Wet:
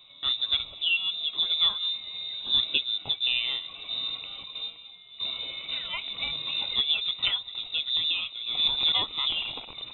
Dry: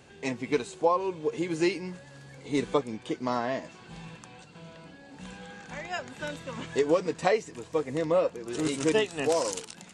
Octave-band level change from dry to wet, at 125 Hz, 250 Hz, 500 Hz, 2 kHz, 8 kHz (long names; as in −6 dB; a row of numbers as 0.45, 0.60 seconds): −13.0 dB, −21.0 dB, −24.0 dB, +2.5 dB, below −40 dB